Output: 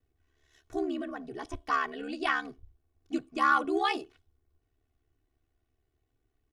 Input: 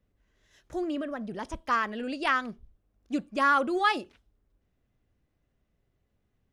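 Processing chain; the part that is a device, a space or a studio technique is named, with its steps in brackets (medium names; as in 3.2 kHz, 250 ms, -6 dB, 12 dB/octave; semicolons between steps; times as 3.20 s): ring-modulated robot voice (ring modulator 36 Hz; comb 2.7 ms, depth 97%); trim -2.5 dB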